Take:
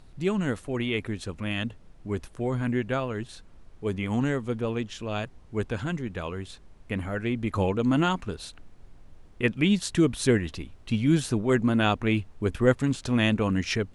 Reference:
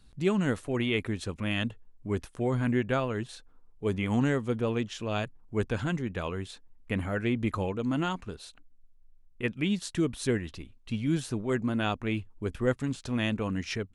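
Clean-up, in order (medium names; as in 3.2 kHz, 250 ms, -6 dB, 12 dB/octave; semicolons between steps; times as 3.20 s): noise print and reduce 6 dB; gain correction -6 dB, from 7.55 s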